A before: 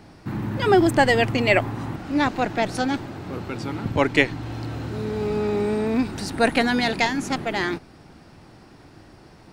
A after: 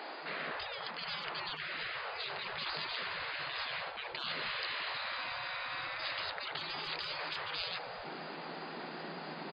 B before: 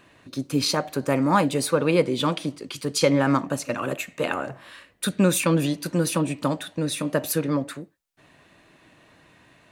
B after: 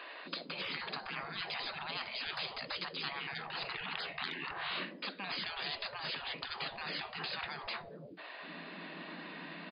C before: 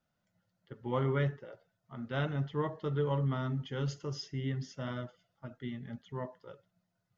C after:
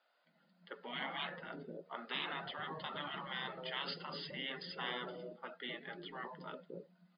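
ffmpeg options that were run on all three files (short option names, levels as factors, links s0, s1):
-filter_complex "[0:a]afftfilt=real='re*between(b*sr/4096,160,5000)':imag='im*between(b*sr/4096,160,5000)':win_size=4096:overlap=0.75,areverse,acompressor=threshold=0.0398:ratio=10,areverse,lowshelf=f=260:g=2.5,acrossover=split=460[s0][s1];[s0]adelay=260[s2];[s2][s1]amix=inputs=2:normalize=0,afftfilt=real='re*lt(hypot(re,im),0.0178)':imag='im*lt(hypot(re,im),0.0178)':win_size=1024:overlap=0.75,volume=2.99"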